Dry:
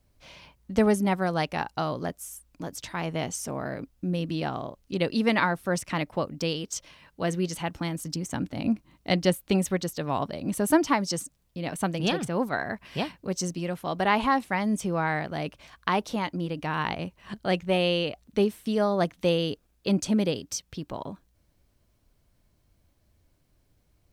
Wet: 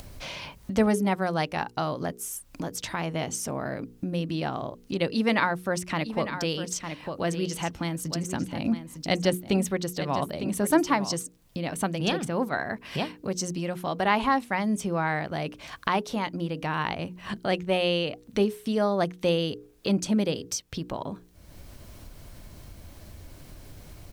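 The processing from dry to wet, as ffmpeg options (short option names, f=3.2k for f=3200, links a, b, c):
-filter_complex "[0:a]asplit=3[a][b][c];[a]afade=t=out:st=5.98:d=0.02[d];[b]aecho=1:1:904:0.282,afade=t=in:st=5.98:d=0.02,afade=t=out:st=11.13:d=0.02[e];[c]afade=t=in:st=11.13:d=0.02[f];[d][e][f]amix=inputs=3:normalize=0,bandreject=f=60:t=h:w=6,bandreject=f=120:t=h:w=6,bandreject=f=180:t=h:w=6,bandreject=f=240:t=h:w=6,bandreject=f=300:t=h:w=6,bandreject=f=360:t=h:w=6,bandreject=f=420:t=h:w=6,bandreject=f=480:t=h:w=6,acompressor=mode=upward:threshold=-26dB:ratio=2.5"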